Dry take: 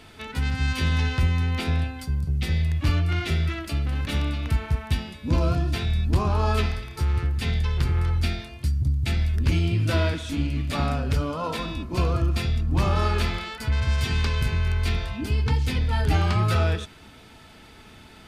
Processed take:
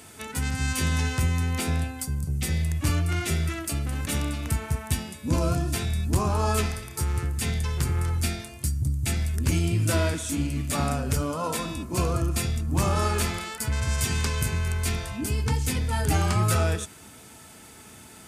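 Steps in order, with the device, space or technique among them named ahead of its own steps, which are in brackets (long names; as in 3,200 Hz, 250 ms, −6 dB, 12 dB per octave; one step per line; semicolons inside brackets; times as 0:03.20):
budget condenser microphone (high-pass filter 79 Hz; high shelf with overshoot 5,600 Hz +12 dB, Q 1.5)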